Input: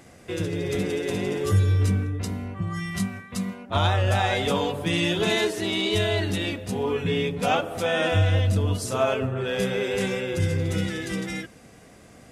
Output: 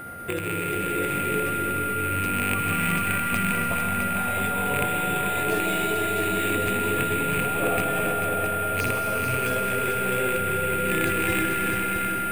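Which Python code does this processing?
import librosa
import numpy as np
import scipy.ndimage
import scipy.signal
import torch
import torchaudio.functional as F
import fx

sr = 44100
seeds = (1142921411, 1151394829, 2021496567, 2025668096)

y = fx.rattle_buzz(x, sr, strikes_db=-32.0, level_db=-16.0)
y = scipy.signal.sosfilt(scipy.signal.butter(2, 3200.0, 'lowpass', fs=sr, output='sos'), y)
y = fx.over_compress(y, sr, threshold_db=-32.0, ratio=-1.0)
y = y + 10.0 ** (-36.0 / 20.0) * np.sin(2.0 * np.pi * 1400.0 * np.arange(len(y)) / sr)
y = fx.echo_heads(y, sr, ms=220, heads='second and third', feedback_pct=42, wet_db=-7.0)
y = fx.rev_freeverb(y, sr, rt60_s=4.3, hf_ratio=0.9, predelay_ms=85, drr_db=2.0)
y = np.repeat(scipy.signal.resample_poly(y, 1, 4), 4)[:len(y)]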